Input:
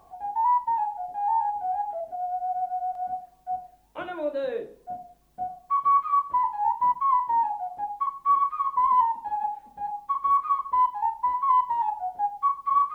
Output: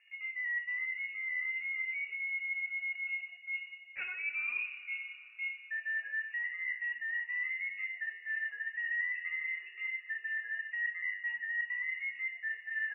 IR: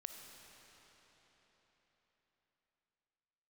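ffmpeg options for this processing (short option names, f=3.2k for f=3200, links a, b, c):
-filter_complex "[0:a]areverse,acompressor=threshold=-34dB:ratio=4,areverse,asplit=2[a][b];[b]adelay=300,highpass=300,lowpass=3.4k,asoftclip=type=hard:threshold=-37dB,volume=-21dB[c];[a][c]amix=inputs=2:normalize=0,agate=range=-11dB:threshold=-53dB:ratio=16:detection=peak,lowshelf=f=300:g=9,lowpass=f=2.5k:t=q:w=0.5098,lowpass=f=2.5k:t=q:w=0.6013,lowpass=f=2.5k:t=q:w=0.9,lowpass=f=2.5k:t=q:w=2.563,afreqshift=-2900,asplit=2[d][e];[e]highshelf=f=2.1k:g=11.5[f];[1:a]atrim=start_sample=2205[g];[f][g]afir=irnorm=-1:irlink=0,volume=-3.5dB[h];[d][h]amix=inputs=2:normalize=0,volume=-7.5dB" -ar 48000 -c:a libopus -b:a 128k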